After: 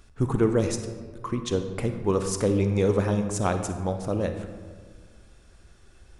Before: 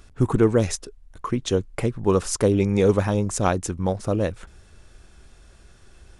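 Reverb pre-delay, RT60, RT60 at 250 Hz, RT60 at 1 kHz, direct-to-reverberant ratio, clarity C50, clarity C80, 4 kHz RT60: 36 ms, 1.7 s, 2.0 s, 1.5 s, 7.0 dB, 8.0 dB, 9.5 dB, 0.90 s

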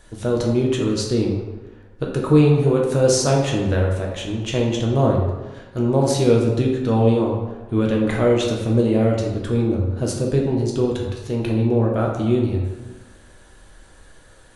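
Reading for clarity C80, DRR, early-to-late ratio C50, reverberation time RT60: 5.5 dB, -1.5 dB, 3.0 dB, 1.2 s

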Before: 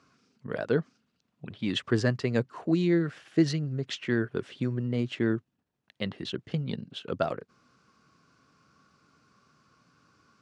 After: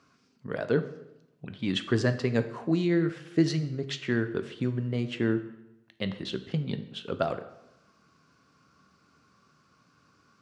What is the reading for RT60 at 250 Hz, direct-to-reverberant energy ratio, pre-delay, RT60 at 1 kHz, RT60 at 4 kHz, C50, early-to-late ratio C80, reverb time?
0.95 s, 9.0 dB, 4 ms, 0.90 s, 0.70 s, 12.5 dB, 15.0 dB, 0.90 s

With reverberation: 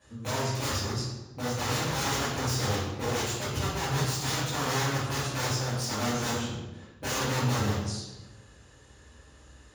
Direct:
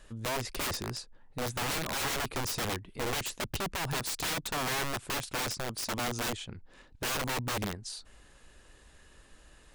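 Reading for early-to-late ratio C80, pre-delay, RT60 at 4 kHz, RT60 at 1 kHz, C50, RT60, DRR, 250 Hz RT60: 3.5 dB, 3 ms, 0.80 s, 0.95 s, 0.5 dB, 1.1 s, -12.0 dB, 1.3 s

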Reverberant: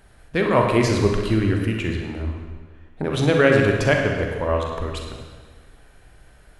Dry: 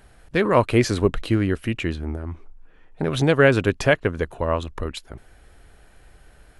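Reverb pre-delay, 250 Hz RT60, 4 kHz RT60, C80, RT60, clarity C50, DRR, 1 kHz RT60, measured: 38 ms, 1.5 s, 1.4 s, 4.5 dB, 1.5 s, 2.5 dB, 1.0 dB, 1.5 s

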